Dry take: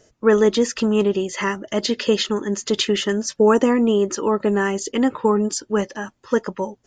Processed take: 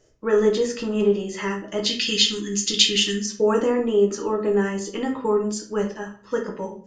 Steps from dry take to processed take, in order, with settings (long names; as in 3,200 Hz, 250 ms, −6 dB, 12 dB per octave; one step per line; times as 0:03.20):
0:01.86–0:03.26: drawn EQ curve 310 Hz 0 dB, 690 Hz −23 dB, 2,800 Hz +12 dB
convolution reverb RT60 0.45 s, pre-delay 6 ms, DRR 0.5 dB
level −8 dB